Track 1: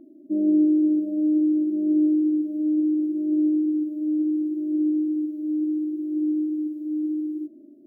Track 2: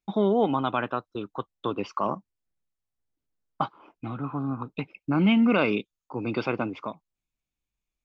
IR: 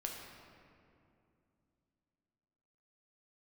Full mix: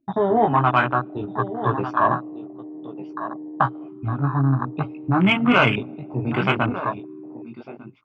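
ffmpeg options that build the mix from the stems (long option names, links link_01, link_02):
-filter_complex "[0:a]aecho=1:1:7.1:0.31,acompressor=threshold=-26dB:ratio=3,volume=-12.5dB,asplit=2[link_01][link_02];[link_02]volume=-10dB[link_03];[1:a]equalizer=frequency=1700:width_type=o:width=2.8:gain=5,flanger=delay=15.5:depth=6.3:speed=0.56,volume=2dB,asplit=3[link_04][link_05][link_06];[link_05]volume=-18dB[link_07];[link_06]volume=-11dB[link_08];[2:a]atrim=start_sample=2205[link_09];[link_03][link_07]amix=inputs=2:normalize=0[link_10];[link_10][link_09]afir=irnorm=-1:irlink=0[link_11];[link_08]aecho=0:1:1199:1[link_12];[link_01][link_04][link_11][link_12]amix=inputs=4:normalize=0,afwtdn=0.0355,equalizer=frequency=125:width_type=o:width=0.33:gain=11,equalizer=frequency=200:width_type=o:width=0.33:gain=-7,equalizer=frequency=315:width_type=o:width=0.33:gain=-7,equalizer=frequency=500:width_type=o:width=0.33:gain=-10,acontrast=83"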